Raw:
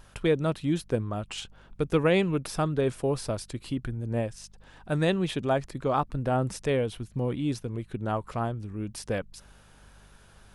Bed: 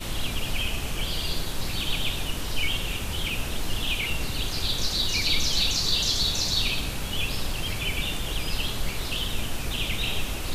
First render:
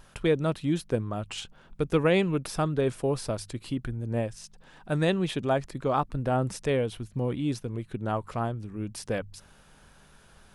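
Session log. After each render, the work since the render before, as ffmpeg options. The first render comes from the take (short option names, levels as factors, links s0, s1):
-af "bandreject=f=50:t=h:w=4,bandreject=f=100:t=h:w=4"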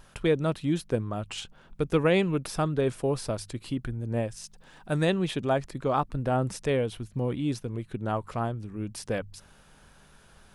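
-filter_complex "[0:a]asettb=1/sr,asplit=3[s0][s1][s2];[s0]atrim=end=4.304[s3];[s1]atrim=start=4.3:end=5.06,asetpts=PTS-STARTPTS,afade=t=in:d=0.004:c=qsin,afade=t=out:st=0.756:d=0.004:c=qsin,highshelf=f=6200:g=5.5[s4];[s2]atrim=start=5.056[s5];[s3][s4]acrossfade=d=0.004:c1=hsin:c2=qsin[s6];[s6][s5]acrossfade=d=0.004:c1=qsin:c2=hsin"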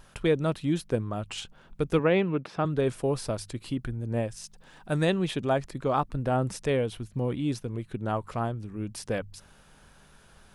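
-filter_complex "[0:a]asettb=1/sr,asplit=3[s0][s1][s2];[s0]atrim=end=1.994[s3];[s1]atrim=start=1.99:end=2.65,asetpts=PTS-STARTPTS,afade=t=in:d=0.004:c=qsin,afade=t=out:st=0.656:d=0.004:c=qsin,highpass=140,lowpass=2800[s4];[s2]atrim=start=2.646[s5];[s3][s4]acrossfade=d=0.004:c1=hsin:c2=qsin[s6];[s6][s5]acrossfade=d=0.004:c1=qsin:c2=hsin"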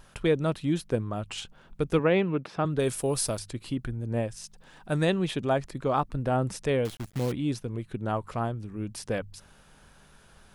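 -filter_complex "[0:a]asettb=1/sr,asplit=3[s0][s1][s2];[s0]atrim=end=2.794[s3];[s1]atrim=start=2.79:end=3.39,asetpts=PTS-STARTPTS,afade=t=in:d=0.004:c=qsin,afade=t=out:st=0.596:d=0.004:c=qsin,aemphasis=mode=production:type=75fm[s4];[s2]atrim=start=3.386[s5];[s3][s4]acrossfade=d=0.004:c1=hsin:c2=qsin[s6];[s6][s5]acrossfade=d=0.004:c1=qsin:c2=hsin,asettb=1/sr,asplit=3[s7][s8][s9];[s7]atrim=end=6.854[s10];[s8]atrim=start=6.85:end=7.32,asetpts=PTS-STARTPTS,afade=t=in:d=0.004:c=qsin,afade=t=out:st=0.466:d=0.004:c=qsin,acrusher=bits=7:dc=4:mix=0:aa=0.000001[s11];[s9]atrim=start=7.316[s12];[s10][s11]acrossfade=d=0.004:c1=hsin:c2=qsin[s13];[s13][s12]acrossfade=d=0.004:c1=qsin:c2=hsin"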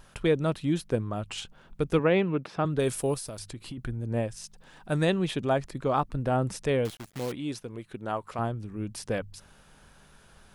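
-filter_complex "[0:a]asettb=1/sr,asplit=3[s0][s1][s2];[s0]atrim=end=3.144[s3];[s1]atrim=start=3.14:end=3.78,asetpts=PTS-STARTPTS,afade=t=in:d=0.004:c=qsin,afade=t=out:st=0.636:d=0.004:c=qsin,acompressor=threshold=0.02:ratio=12:attack=3.2:release=140:knee=1:detection=peak[s4];[s2]atrim=start=3.776[s5];[s3][s4]acrossfade=d=0.004:c1=hsin:c2=qsin[s6];[s6][s5]acrossfade=d=0.004:c1=qsin:c2=hsin,asettb=1/sr,asplit=3[s7][s8][s9];[s7]atrim=end=6.904[s10];[s8]atrim=start=6.9:end=8.39,asetpts=PTS-STARTPTS,afade=t=in:d=0.004:c=qsin,afade=t=out:st=1.486:d=0.004:c=qsin,lowshelf=f=210:g=-12[s11];[s9]atrim=start=8.386[s12];[s10][s11]acrossfade=d=0.004:c1=hsin:c2=qsin[s13];[s13][s12]acrossfade=d=0.004:c1=qsin:c2=hsin"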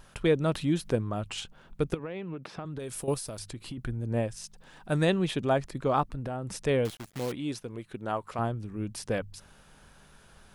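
-filter_complex "[0:a]asettb=1/sr,asplit=3[s0][s1][s2];[s0]atrim=end=0.554[s3];[s1]atrim=start=0.55:end=1.28,asetpts=PTS-STARTPTS,afade=t=in:d=0.004:c=qsin,afade=t=out:st=0.726:d=0.004:c=qsin,acompressor=mode=upward:threshold=0.0355:ratio=2.5:attack=3.2:release=140:knee=2.83:detection=peak[s4];[s2]atrim=start=1.276[s5];[s3][s4]acrossfade=d=0.004:c1=hsin:c2=qsin[s6];[s6][s5]acrossfade=d=0.004:c1=qsin:c2=hsin,asettb=1/sr,asplit=3[s7][s8][s9];[s7]atrim=end=1.944[s10];[s8]atrim=start=1.94:end=3.08,asetpts=PTS-STARTPTS,afade=t=in:d=0.004:c=qsin,afade=t=out:st=1.136:d=0.004:c=qsin,acompressor=threshold=0.0224:ratio=16:attack=3.2:release=140:knee=1:detection=peak[s11];[s9]atrim=start=3.076[s12];[s10][s11]acrossfade=d=0.004:c1=hsin:c2=qsin[s13];[s13][s12]acrossfade=d=0.004:c1=qsin:c2=hsin,asettb=1/sr,asplit=3[s14][s15][s16];[s14]atrim=end=6.144[s17];[s15]atrim=start=6.14:end=6.54,asetpts=PTS-STARTPTS,afade=t=in:d=0.004:c=qsin,afade=t=out:st=0.396:d=0.004:c=qsin,acompressor=threshold=0.0282:ratio=5:attack=3.2:release=140:knee=1:detection=peak[s18];[s16]atrim=start=6.536[s19];[s17][s18]acrossfade=d=0.004:c1=hsin:c2=qsin[s20];[s20][s19]acrossfade=d=0.004:c1=qsin:c2=hsin"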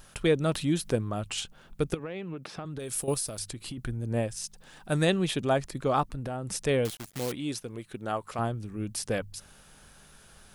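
-af "highshelf=f=4500:g=8.5,bandreject=f=970:w=19"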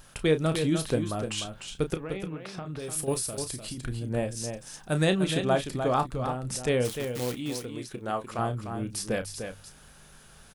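-filter_complex "[0:a]asplit=2[s0][s1];[s1]adelay=32,volume=0.316[s2];[s0][s2]amix=inputs=2:normalize=0,asplit=2[s3][s4];[s4]aecho=0:1:300:0.422[s5];[s3][s5]amix=inputs=2:normalize=0"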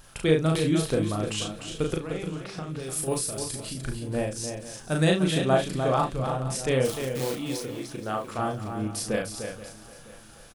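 -filter_complex "[0:a]asplit=2[s0][s1];[s1]adelay=38,volume=0.708[s2];[s0][s2]amix=inputs=2:normalize=0,aecho=1:1:477|954|1431|1908|2385:0.15|0.0778|0.0405|0.021|0.0109"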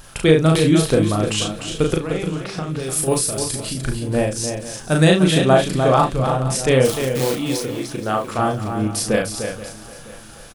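-af "volume=2.82,alimiter=limit=0.794:level=0:latency=1"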